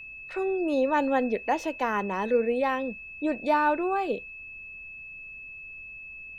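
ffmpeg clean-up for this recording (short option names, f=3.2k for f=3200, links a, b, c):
-af "bandreject=f=2.6k:w=30,agate=range=-21dB:threshold=-35dB"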